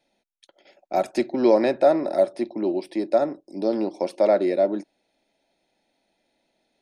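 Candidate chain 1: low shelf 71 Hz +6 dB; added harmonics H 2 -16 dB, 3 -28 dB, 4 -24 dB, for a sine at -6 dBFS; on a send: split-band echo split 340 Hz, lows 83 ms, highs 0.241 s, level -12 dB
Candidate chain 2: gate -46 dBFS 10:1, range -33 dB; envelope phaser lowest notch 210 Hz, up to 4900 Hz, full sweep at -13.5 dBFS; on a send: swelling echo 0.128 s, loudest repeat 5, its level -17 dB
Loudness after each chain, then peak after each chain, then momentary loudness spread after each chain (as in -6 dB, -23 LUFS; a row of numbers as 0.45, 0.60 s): -23.0, -24.0 LUFS; -4.0, -6.5 dBFS; 11, 17 LU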